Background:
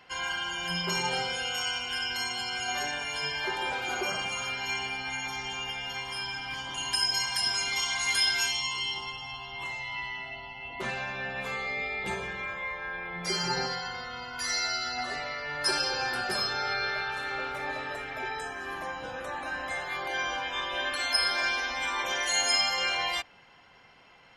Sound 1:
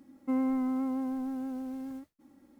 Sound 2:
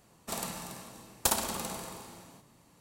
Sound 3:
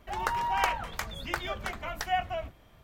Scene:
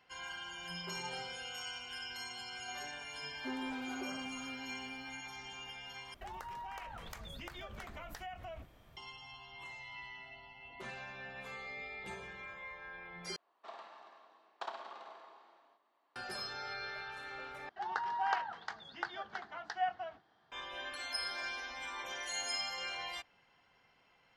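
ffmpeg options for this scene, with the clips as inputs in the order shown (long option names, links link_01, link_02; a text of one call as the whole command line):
ffmpeg -i bed.wav -i cue0.wav -i cue1.wav -i cue2.wav -filter_complex "[3:a]asplit=2[link_01][link_02];[0:a]volume=-12.5dB[link_03];[link_01]acompressor=threshold=-39dB:ratio=6:attack=3.2:release=140:knee=1:detection=peak[link_04];[2:a]highpass=frequency=390:width=0.5412,highpass=frequency=390:width=1.3066,equalizer=frequency=490:width_type=q:width=4:gain=-7,equalizer=frequency=690:width_type=q:width=4:gain=6,equalizer=frequency=1100:width_type=q:width=4:gain=6,equalizer=frequency=1600:width_type=q:width=4:gain=3,equalizer=frequency=2500:width_type=q:width=4:gain=-4,lowpass=frequency=3600:width=0.5412,lowpass=frequency=3600:width=1.3066[link_05];[link_02]highpass=250,equalizer=frequency=260:width_type=q:width=4:gain=-4,equalizer=frequency=560:width_type=q:width=4:gain=-9,equalizer=frequency=790:width_type=q:width=4:gain=8,equalizer=frequency=1600:width_type=q:width=4:gain=7,equalizer=frequency=2400:width_type=q:width=4:gain=-10,equalizer=frequency=4600:width_type=q:width=4:gain=4,lowpass=frequency=5200:width=0.5412,lowpass=frequency=5200:width=1.3066[link_06];[link_03]asplit=4[link_07][link_08][link_09][link_10];[link_07]atrim=end=6.144[link_11];[link_04]atrim=end=2.83,asetpts=PTS-STARTPTS,volume=-4dB[link_12];[link_08]atrim=start=8.966:end=13.364[link_13];[link_05]atrim=end=2.8,asetpts=PTS-STARTPTS,volume=-12.5dB[link_14];[link_09]atrim=start=16.156:end=17.694[link_15];[link_06]atrim=end=2.83,asetpts=PTS-STARTPTS,volume=-9.5dB[link_16];[link_10]atrim=start=20.516[link_17];[1:a]atrim=end=2.59,asetpts=PTS-STARTPTS,volume=-13.5dB,afade=type=in:duration=0.004:curve=hsin,afade=type=out:start_time=2.586:duration=0.004:curve=hsin,adelay=139797S[link_18];[link_11][link_12]acrossfade=duration=0.004:curve1=hsin:curve2=hsin[link_19];[link_19][link_13]acrossfade=duration=0.004:curve1=hsin:curve2=hsin[link_20];[link_20][link_14]acrossfade=duration=0.004:curve1=hsin:curve2=hsin[link_21];[link_21][link_15]acrossfade=duration=0.004:curve1=hsin:curve2=hsin[link_22];[link_22][link_16]acrossfade=duration=0.004:curve1=hsin:curve2=hsin[link_23];[link_23][link_17]acrossfade=duration=0.004:curve1=hsin:curve2=hsin[link_24];[link_24][link_18]amix=inputs=2:normalize=0" out.wav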